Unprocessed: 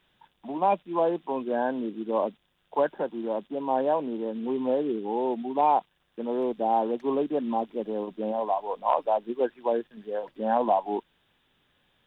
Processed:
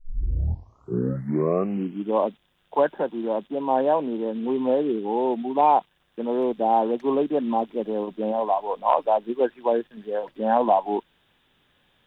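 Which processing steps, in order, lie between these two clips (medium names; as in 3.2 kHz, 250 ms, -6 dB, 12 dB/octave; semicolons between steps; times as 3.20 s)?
tape start-up on the opening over 2.19 s; trim +4 dB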